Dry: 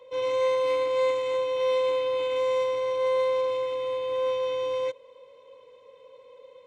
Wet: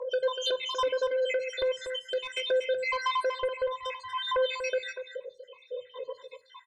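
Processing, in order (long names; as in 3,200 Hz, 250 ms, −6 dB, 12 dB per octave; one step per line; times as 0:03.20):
time-frequency cells dropped at random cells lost 79%
mains-hum notches 50/100/150/200 Hz
gate on every frequency bin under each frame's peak −25 dB strong
dynamic equaliser 900 Hz, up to −4 dB, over −36 dBFS, Q 0.71
downward compressor 16 to 1, threshold −37 dBFS, peak gain reduction 13 dB
sine wavefolder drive 7 dB, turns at −28.5 dBFS
rotating-speaker cabinet horn 6 Hz, later 0.6 Hz, at 0:01.17
single-tap delay 241 ms −9 dB
on a send at −11 dB: convolution reverb RT60 0.40 s, pre-delay 3 ms
on the sum: level +7 dB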